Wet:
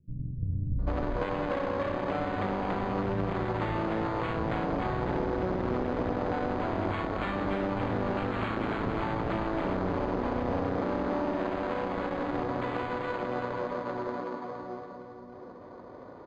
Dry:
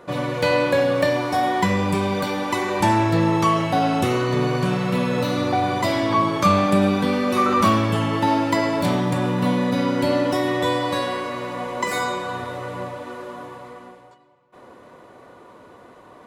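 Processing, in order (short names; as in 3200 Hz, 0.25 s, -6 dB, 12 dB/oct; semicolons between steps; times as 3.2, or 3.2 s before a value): self-modulated delay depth 0.51 ms; on a send: split-band echo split 390 Hz, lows 0.56 s, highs 0.282 s, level -3 dB; on the sum: careless resampling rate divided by 8×, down filtered, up hold; added harmonics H 6 -9 dB, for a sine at -5 dBFS; bands offset in time lows, highs 0.79 s, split 160 Hz; compressor 6:1, threshold -24 dBFS, peak gain reduction 12.5 dB; tape spacing loss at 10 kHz 44 dB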